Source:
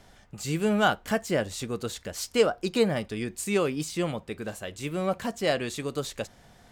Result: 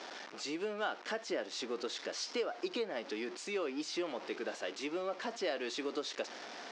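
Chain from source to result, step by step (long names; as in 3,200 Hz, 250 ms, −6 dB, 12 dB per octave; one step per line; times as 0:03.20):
converter with a step at zero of −35.5 dBFS
downward compressor 6 to 1, threshold −28 dBFS, peak gain reduction 12 dB
elliptic band-pass filter 300–5,500 Hz, stop band 50 dB
level −3.5 dB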